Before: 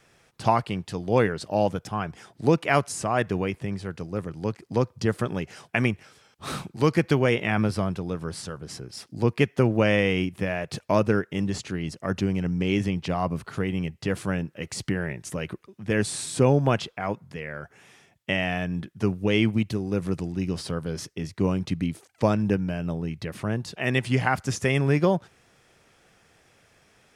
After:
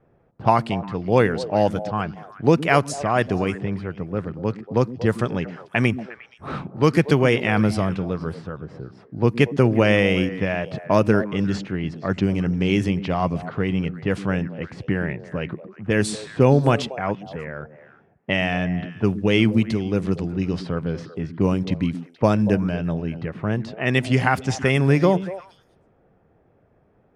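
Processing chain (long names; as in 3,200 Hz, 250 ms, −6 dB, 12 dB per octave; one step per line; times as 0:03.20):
low-pass that shuts in the quiet parts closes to 670 Hz, open at −19.5 dBFS
echo through a band-pass that steps 118 ms, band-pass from 220 Hz, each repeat 1.4 octaves, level −8.5 dB
level +4 dB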